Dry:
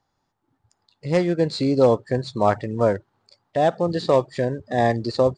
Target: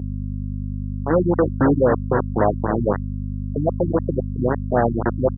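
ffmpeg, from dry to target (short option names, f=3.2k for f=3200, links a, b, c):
-filter_complex "[0:a]lowpass=f=2.7k:w=0.5412,lowpass=f=2.7k:w=1.3066,equalizer=f=1.7k:t=o:w=1.7:g=-6,acompressor=threshold=-20dB:ratio=4,asplit=2[a][b];[b]aecho=0:1:266:0.266[c];[a][c]amix=inputs=2:normalize=0,acrusher=bits=3:mix=0:aa=0.000001,asplit=2[d][e];[e]alimiter=limit=-18dB:level=0:latency=1,volume=-2dB[f];[d][f]amix=inputs=2:normalize=0,aeval=exprs='val(0)+0.0891*(sin(2*PI*50*n/s)+sin(2*PI*2*50*n/s)/2+sin(2*PI*3*50*n/s)/3+sin(2*PI*4*50*n/s)/4+sin(2*PI*5*50*n/s)/5)':c=same,highpass=81,equalizer=f=160:t=o:w=1.8:g=-4,afftfilt=real='re*lt(b*sr/1024,310*pow(2000/310,0.5+0.5*sin(2*PI*3.8*pts/sr)))':imag='im*lt(b*sr/1024,310*pow(2000/310,0.5+0.5*sin(2*PI*3.8*pts/sr)))':win_size=1024:overlap=0.75,volume=3dB"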